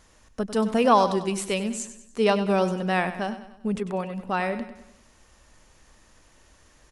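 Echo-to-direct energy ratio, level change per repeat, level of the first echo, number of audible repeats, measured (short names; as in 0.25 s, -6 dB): -11.0 dB, -6.5 dB, -12.0 dB, 4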